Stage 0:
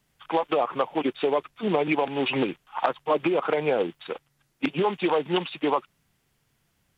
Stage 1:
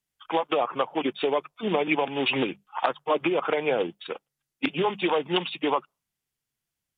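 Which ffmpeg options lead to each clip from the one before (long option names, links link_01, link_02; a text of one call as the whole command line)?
ffmpeg -i in.wav -af "bandreject=frequency=50:width_type=h:width=6,bandreject=frequency=100:width_type=h:width=6,bandreject=frequency=150:width_type=h:width=6,bandreject=frequency=200:width_type=h:width=6,afftdn=noise_reduction=18:noise_floor=-46,highshelf=frequency=3000:gain=10,volume=-1.5dB" out.wav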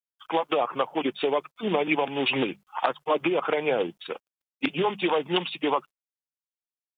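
ffmpeg -i in.wav -af "acrusher=bits=11:mix=0:aa=0.000001" out.wav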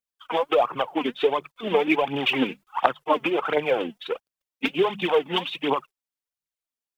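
ffmpeg -i in.wav -af "aphaser=in_gain=1:out_gain=1:delay=4.7:decay=0.62:speed=1.4:type=triangular" out.wav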